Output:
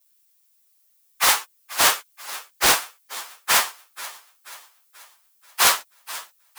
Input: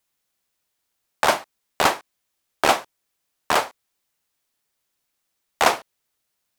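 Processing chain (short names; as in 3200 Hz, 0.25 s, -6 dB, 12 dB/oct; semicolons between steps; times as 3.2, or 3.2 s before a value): pitch shift by moving bins +5.5 st; hard clip -18.5 dBFS, distortion -11 dB; RIAA curve recording; on a send: thinning echo 0.484 s, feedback 47%, high-pass 190 Hz, level -17 dB; on the sum: Doppler distortion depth 0.55 ms; gain +3.5 dB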